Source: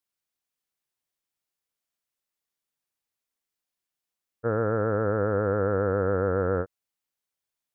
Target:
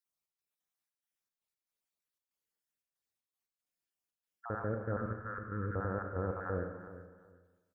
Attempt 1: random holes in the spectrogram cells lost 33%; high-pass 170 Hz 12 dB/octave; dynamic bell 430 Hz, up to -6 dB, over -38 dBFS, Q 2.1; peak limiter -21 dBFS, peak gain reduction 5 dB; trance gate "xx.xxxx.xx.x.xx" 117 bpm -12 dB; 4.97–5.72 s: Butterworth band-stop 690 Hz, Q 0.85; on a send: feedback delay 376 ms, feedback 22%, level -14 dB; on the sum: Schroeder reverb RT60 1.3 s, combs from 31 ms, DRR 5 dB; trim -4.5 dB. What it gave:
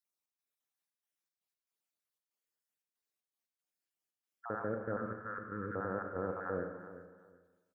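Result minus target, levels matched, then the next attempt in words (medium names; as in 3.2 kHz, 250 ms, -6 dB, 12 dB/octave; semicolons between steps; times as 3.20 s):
125 Hz band -7.0 dB
random holes in the spectrogram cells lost 33%; dynamic bell 430 Hz, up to -6 dB, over -38 dBFS, Q 2.1; peak limiter -21 dBFS, peak gain reduction 5 dB; trance gate "xx.xxxx.xx.x.xx" 117 bpm -12 dB; 4.97–5.72 s: Butterworth band-stop 690 Hz, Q 0.85; on a send: feedback delay 376 ms, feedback 22%, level -14 dB; on the sum: Schroeder reverb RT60 1.3 s, combs from 31 ms, DRR 5 dB; trim -4.5 dB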